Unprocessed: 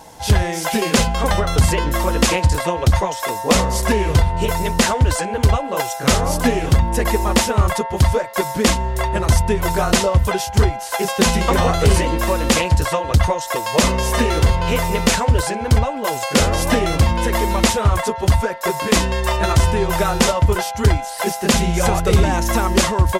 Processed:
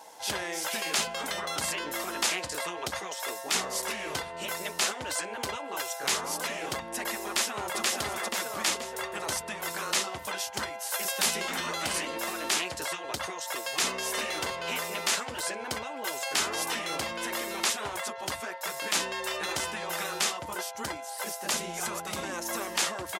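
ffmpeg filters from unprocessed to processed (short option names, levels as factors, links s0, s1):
-filter_complex "[0:a]asplit=2[s0][s1];[s1]afade=t=in:st=7.26:d=0.01,afade=t=out:st=7.8:d=0.01,aecho=0:1:480|960|1440|1920|2400|2880:0.891251|0.401063|0.180478|0.0812152|0.0365469|0.0164461[s2];[s0][s2]amix=inputs=2:normalize=0,asettb=1/sr,asplit=3[s3][s4][s5];[s3]atrim=end=10.634[s6];[s4]atrim=start=10.63:end=11.34,asetpts=PTS-STARTPTS,afade=t=in:d=0.004:c=qsin,afade=t=out:st=0.706:d=0.004:c=qsin,highshelf=f=10000:g=10[s7];[s5]atrim=start=11.336[s8];[s6][s7]acrossfade=d=0.004:c1=hsin:c2=qsin[s9];[s9][s8]acrossfade=d=0.004:c1=qsin:c2=hsin,asettb=1/sr,asplit=3[s10][s11][s12];[s10]atrim=end=20.374[s13];[s11]atrim=start=20.37:end=22.61,asetpts=PTS-STARTPTS,afade=t=in:d=0.004:c=qsin,afade=t=out:st=2.236:d=0.004:c=qsin,equalizer=f=2500:t=o:w=2.3:g=-5[s14];[s12]atrim=start=22.606[s15];[s13][s14]acrossfade=d=0.004:c1=hsin:c2=qsin[s16];[s16][s15]acrossfade=d=0.004:c1=qsin:c2=hsin,highpass=460,afftfilt=real='re*lt(hypot(re,im),0.316)':imag='im*lt(hypot(re,im),0.316)':win_size=1024:overlap=0.75,volume=0.447"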